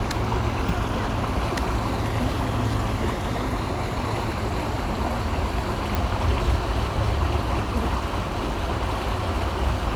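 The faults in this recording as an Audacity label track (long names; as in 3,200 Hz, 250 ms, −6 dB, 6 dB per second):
5.950000	5.950000	click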